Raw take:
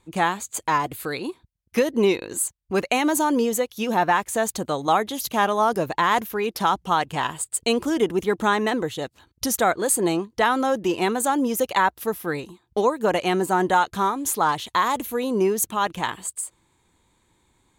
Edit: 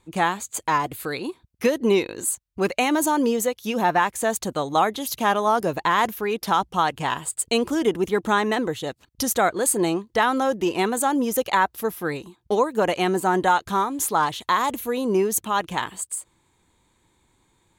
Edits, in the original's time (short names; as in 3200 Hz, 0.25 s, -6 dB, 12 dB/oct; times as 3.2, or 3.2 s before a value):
shrink pauses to 20%